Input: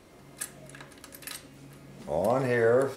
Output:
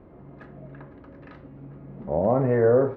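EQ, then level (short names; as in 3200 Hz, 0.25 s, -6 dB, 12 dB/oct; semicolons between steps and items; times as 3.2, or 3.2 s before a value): LPF 1200 Hz 12 dB/oct; air absorption 180 m; low shelf 370 Hz +5.5 dB; +3.0 dB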